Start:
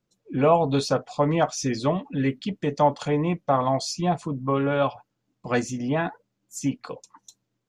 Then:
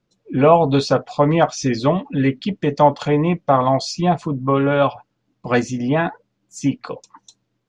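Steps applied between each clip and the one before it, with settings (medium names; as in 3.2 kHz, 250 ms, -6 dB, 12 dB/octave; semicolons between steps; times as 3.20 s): low-pass 5.3 kHz 12 dB/octave; trim +6.5 dB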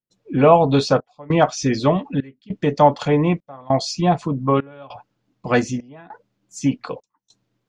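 trance gate ".xxxxxxxxx.." 150 bpm -24 dB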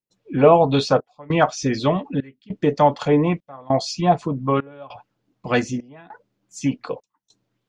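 sweeping bell 1.9 Hz 320–3400 Hz +6 dB; trim -2.5 dB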